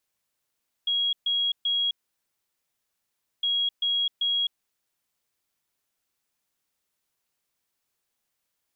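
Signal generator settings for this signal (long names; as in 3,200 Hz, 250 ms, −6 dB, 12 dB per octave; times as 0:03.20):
beeps in groups sine 3,300 Hz, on 0.26 s, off 0.13 s, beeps 3, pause 1.52 s, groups 2, −22 dBFS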